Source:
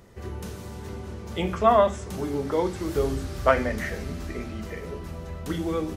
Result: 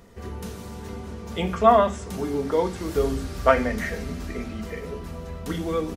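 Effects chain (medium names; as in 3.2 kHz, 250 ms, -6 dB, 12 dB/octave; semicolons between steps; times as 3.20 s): comb 4.3 ms, depth 36%; trim +1 dB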